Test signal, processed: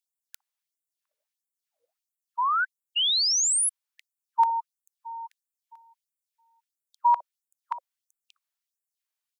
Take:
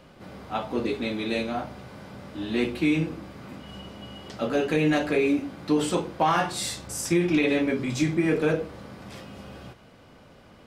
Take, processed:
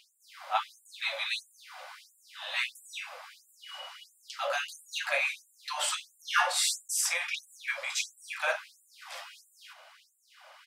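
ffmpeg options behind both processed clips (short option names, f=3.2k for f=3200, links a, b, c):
-filter_complex "[0:a]acrossover=split=530[a][b];[a]adelay=60[c];[c][b]amix=inputs=2:normalize=0,afftfilt=real='re*gte(b*sr/1024,500*pow(7200/500,0.5+0.5*sin(2*PI*1.5*pts/sr)))':imag='im*gte(b*sr/1024,500*pow(7200/500,0.5+0.5*sin(2*PI*1.5*pts/sr)))':win_size=1024:overlap=0.75,volume=3.5dB"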